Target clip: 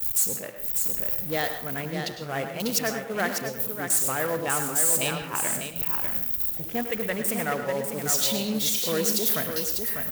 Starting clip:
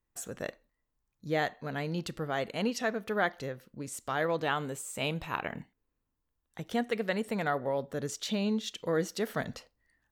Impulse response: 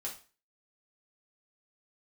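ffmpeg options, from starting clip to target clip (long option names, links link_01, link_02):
-filter_complex "[0:a]aeval=exprs='val(0)+0.5*0.0211*sgn(val(0))':channel_layout=same,highpass=frequency=65:poles=1,aemphasis=mode=production:type=75fm,afwtdn=0.0178,acrusher=bits=4:mode=log:mix=0:aa=0.000001,aecho=1:1:597:0.501,agate=range=-33dB:threshold=-28dB:ratio=3:detection=peak,asplit=2[link_01][link_02];[1:a]atrim=start_sample=2205,adelay=102[link_03];[link_02][link_03]afir=irnorm=-1:irlink=0,volume=-8dB[link_04];[link_01][link_04]amix=inputs=2:normalize=0"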